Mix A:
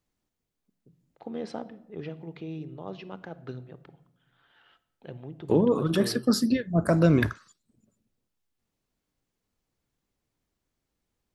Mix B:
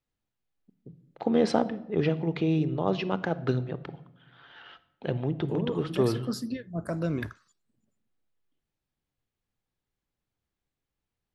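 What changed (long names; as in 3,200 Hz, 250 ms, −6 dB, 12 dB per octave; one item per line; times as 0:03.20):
first voice +12.0 dB
second voice −9.5 dB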